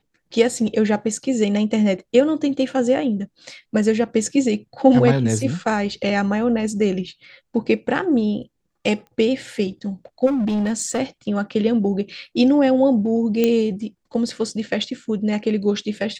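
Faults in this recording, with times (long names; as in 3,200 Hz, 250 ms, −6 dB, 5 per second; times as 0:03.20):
0:09.07: click −32 dBFS
0:10.26–0:10.99: clipping −17.5 dBFS
0:13.44: click −6 dBFS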